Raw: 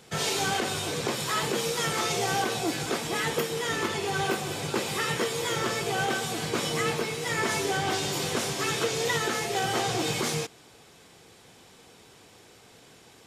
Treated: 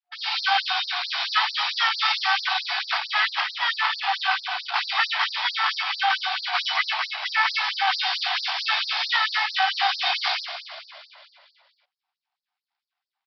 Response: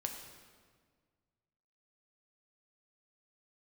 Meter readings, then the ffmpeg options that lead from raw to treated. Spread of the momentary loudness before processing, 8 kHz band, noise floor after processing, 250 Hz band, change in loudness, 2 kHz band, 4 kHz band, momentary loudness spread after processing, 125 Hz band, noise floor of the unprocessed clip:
3 LU, −16.0 dB, below −85 dBFS, below −40 dB, +5.0 dB, +7.5 dB, +8.0 dB, 4 LU, below −40 dB, −54 dBFS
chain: -filter_complex "[0:a]anlmdn=10,aresample=11025,acrusher=bits=5:mode=log:mix=0:aa=0.000001,aresample=44100,lowshelf=frequency=110:gain=7,dynaudnorm=framelen=230:gausssize=3:maxgain=9.5dB,afftfilt=real='re*(1-between(b*sr/4096,130,720))':imag='im*(1-between(b*sr/4096,130,720))':win_size=4096:overlap=0.75,asplit=2[link_01][link_02];[link_02]asplit=6[link_03][link_04][link_05][link_06][link_07][link_08];[link_03]adelay=233,afreqshift=-34,volume=-10.5dB[link_09];[link_04]adelay=466,afreqshift=-68,volume=-16dB[link_10];[link_05]adelay=699,afreqshift=-102,volume=-21.5dB[link_11];[link_06]adelay=932,afreqshift=-136,volume=-27dB[link_12];[link_07]adelay=1165,afreqshift=-170,volume=-32.6dB[link_13];[link_08]adelay=1398,afreqshift=-204,volume=-38.1dB[link_14];[link_09][link_10][link_11][link_12][link_13][link_14]amix=inputs=6:normalize=0[link_15];[link_01][link_15]amix=inputs=2:normalize=0,afftfilt=real='re*gte(b*sr/1024,310*pow(4200/310,0.5+0.5*sin(2*PI*4.5*pts/sr)))':imag='im*gte(b*sr/1024,310*pow(4200/310,0.5+0.5*sin(2*PI*4.5*pts/sr)))':win_size=1024:overlap=0.75"

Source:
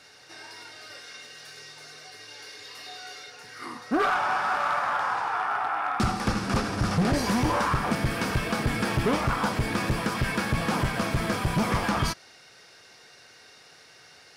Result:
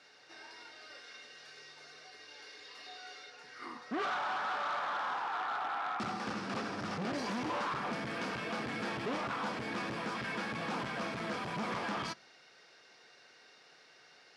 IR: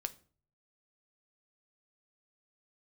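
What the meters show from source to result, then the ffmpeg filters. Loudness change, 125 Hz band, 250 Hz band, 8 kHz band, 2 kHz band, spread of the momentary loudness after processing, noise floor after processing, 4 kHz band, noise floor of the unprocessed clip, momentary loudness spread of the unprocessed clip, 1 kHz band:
−10.5 dB, −18.5 dB, −12.0 dB, −14.5 dB, −9.0 dB, 16 LU, −61 dBFS, −9.0 dB, −53 dBFS, 18 LU, −9.0 dB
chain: -filter_complex "[0:a]volume=25.5dB,asoftclip=hard,volume=-25.5dB,highpass=200,lowpass=5900,asplit=2[link_01][link_02];[1:a]atrim=start_sample=2205,lowpass=5700[link_03];[link_02][link_03]afir=irnorm=-1:irlink=0,volume=-11.5dB[link_04];[link_01][link_04]amix=inputs=2:normalize=0,volume=-8.5dB"

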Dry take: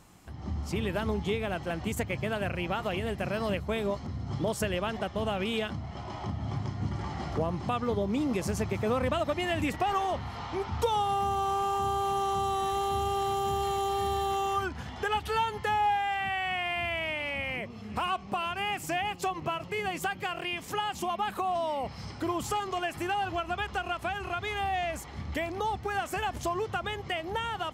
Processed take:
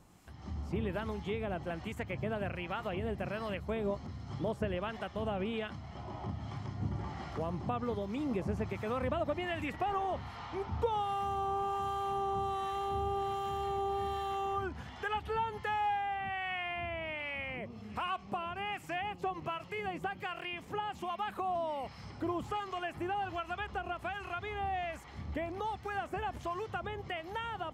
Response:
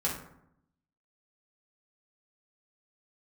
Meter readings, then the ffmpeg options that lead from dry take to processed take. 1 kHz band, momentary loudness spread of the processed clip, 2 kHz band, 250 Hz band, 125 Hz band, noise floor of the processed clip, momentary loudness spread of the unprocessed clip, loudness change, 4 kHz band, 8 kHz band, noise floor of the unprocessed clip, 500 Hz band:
−5.5 dB, 6 LU, −6.5 dB, −5.5 dB, −5.5 dB, −50 dBFS, 6 LU, −5.5 dB, −9.0 dB, below −15 dB, −43 dBFS, −5.0 dB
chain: -filter_complex "[0:a]acrossover=split=3100[link_01][link_02];[link_02]acompressor=threshold=-55dB:ratio=4:attack=1:release=60[link_03];[link_01][link_03]amix=inputs=2:normalize=0,acrossover=split=950[link_04][link_05];[link_04]aeval=exprs='val(0)*(1-0.5/2+0.5/2*cos(2*PI*1.3*n/s))':channel_layout=same[link_06];[link_05]aeval=exprs='val(0)*(1-0.5/2-0.5/2*cos(2*PI*1.3*n/s))':channel_layout=same[link_07];[link_06][link_07]amix=inputs=2:normalize=0,volume=-3dB"

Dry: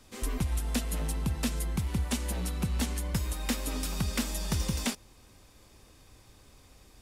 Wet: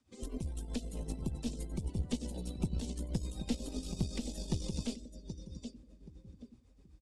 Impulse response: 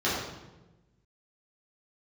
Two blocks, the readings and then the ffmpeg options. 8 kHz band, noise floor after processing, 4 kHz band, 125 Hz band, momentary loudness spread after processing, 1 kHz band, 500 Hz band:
−11.5 dB, −63 dBFS, −9.5 dB, −6.5 dB, 17 LU, −14.0 dB, −4.5 dB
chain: -filter_complex "[0:a]acrossover=split=580|3300[link_01][link_02][link_03];[link_02]acompressor=threshold=-57dB:ratio=12[link_04];[link_01][link_04][link_03]amix=inputs=3:normalize=0,highpass=frequency=99:poles=1,asplit=2[link_05][link_06];[link_06]adelay=777,lowpass=frequency=4700:poles=1,volume=-9dB,asplit=2[link_07][link_08];[link_08]adelay=777,lowpass=frequency=4700:poles=1,volume=0.44,asplit=2[link_09][link_10];[link_10]adelay=777,lowpass=frequency=4700:poles=1,volume=0.44,asplit=2[link_11][link_12];[link_12]adelay=777,lowpass=frequency=4700:poles=1,volume=0.44,asplit=2[link_13][link_14];[link_14]adelay=777,lowpass=frequency=4700:poles=1,volume=0.44[link_15];[link_07][link_09][link_11][link_13][link_15]amix=inputs=5:normalize=0[link_16];[link_05][link_16]amix=inputs=2:normalize=0,aeval=exprs='(tanh(17.8*val(0)+0.65)-tanh(0.65))/17.8':channel_layout=same,afftdn=noise_reduction=17:noise_floor=-53,lowpass=frequency=9600:width=0.5412,lowpass=frequency=9600:width=1.3066,tremolo=f=7.9:d=0.61,acrossover=split=4100[link_17][link_18];[link_18]acompressor=threshold=-51dB:ratio=4:attack=1:release=60[link_19];[link_17][link_19]amix=inputs=2:normalize=0,volume=3dB"

